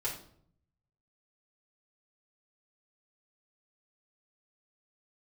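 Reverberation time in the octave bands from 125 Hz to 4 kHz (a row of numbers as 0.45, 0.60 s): 1.2, 0.85, 0.70, 0.55, 0.45, 0.45 s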